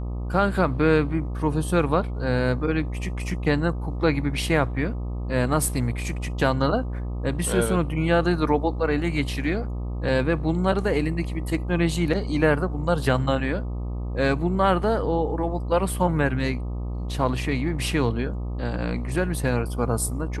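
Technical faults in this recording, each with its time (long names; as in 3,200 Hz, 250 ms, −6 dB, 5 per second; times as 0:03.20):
mains buzz 60 Hz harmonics 21 −29 dBFS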